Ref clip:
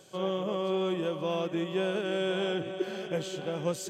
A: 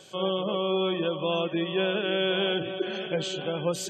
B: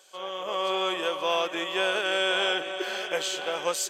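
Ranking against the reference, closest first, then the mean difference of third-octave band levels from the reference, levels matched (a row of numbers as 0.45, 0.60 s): A, B; 4.5, 8.0 dB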